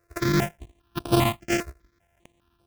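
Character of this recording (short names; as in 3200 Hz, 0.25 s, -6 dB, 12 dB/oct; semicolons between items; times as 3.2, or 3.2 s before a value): a buzz of ramps at a fixed pitch in blocks of 128 samples; chopped level 12 Hz, depth 60%, duty 85%; aliases and images of a low sample rate 4300 Hz, jitter 20%; notches that jump at a steady rate 5 Hz 860–6900 Hz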